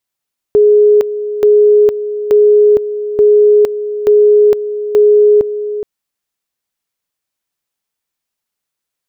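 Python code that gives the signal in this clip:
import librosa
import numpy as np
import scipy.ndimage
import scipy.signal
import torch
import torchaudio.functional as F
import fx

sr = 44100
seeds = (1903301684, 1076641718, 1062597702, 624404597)

y = fx.two_level_tone(sr, hz=418.0, level_db=-4.0, drop_db=12.0, high_s=0.46, low_s=0.42, rounds=6)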